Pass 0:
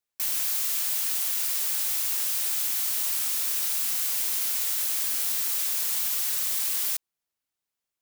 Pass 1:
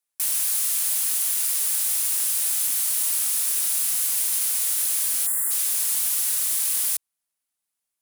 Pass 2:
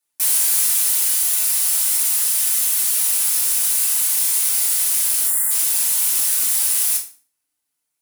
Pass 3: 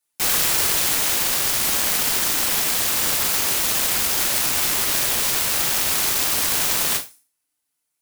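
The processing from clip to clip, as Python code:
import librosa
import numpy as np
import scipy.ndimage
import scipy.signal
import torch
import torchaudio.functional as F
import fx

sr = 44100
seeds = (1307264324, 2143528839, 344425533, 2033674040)

y1 = fx.spec_box(x, sr, start_s=5.27, length_s=0.24, low_hz=2100.0, high_hz=6900.0, gain_db=-27)
y1 = fx.graphic_eq_15(y1, sr, hz=(100, 400, 10000), db=(-12, -6, 10))
y2 = fx.rider(y1, sr, range_db=10, speed_s=2.0)
y2 = fx.rev_fdn(y2, sr, rt60_s=0.39, lf_ratio=1.3, hf_ratio=0.9, size_ms=20.0, drr_db=-4.0)
y3 = fx.self_delay(y2, sr, depth_ms=0.78)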